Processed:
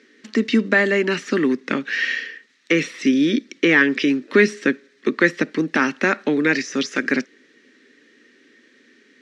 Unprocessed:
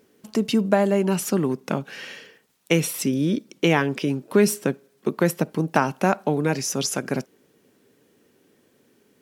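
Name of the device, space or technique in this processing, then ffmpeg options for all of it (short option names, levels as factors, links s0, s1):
television speaker: -af "deesser=0.85,highpass=f=170:w=0.5412,highpass=f=170:w=1.3066,equalizer=f=190:t=q:w=4:g=-9,equalizer=f=700:t=q:w=4:g=-8,equalizer=f=1200:t=q:w=4:g=7,equalizer=f=1800:t=q:w=4:g=9,equalizer=f=3900:t=q:w=4:g=4,equalizer=f=5800:t=q:w=4:g=3,lowpass=f=7100:w=0.5412,lowpass=f=7100:w=1.3066,equalizer=f=125:t=o:w=1:g=-6,equalizer=f=250:t=o:w=1:g=8,equalizer=f=1000:t=o:w=1:g=-9,equalizer=f=2000:t=o:w=1:g=11,equalizer=f=4000:t=o:w=1:g=4,volume=1.26"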